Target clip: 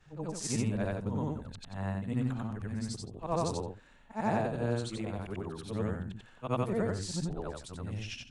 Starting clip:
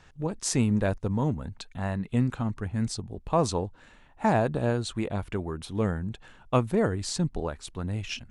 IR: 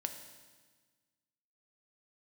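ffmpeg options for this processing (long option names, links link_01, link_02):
-af "afftfilt=real='re':imag='-im':win_size=8192:overlap=0.75,volume=-2dB"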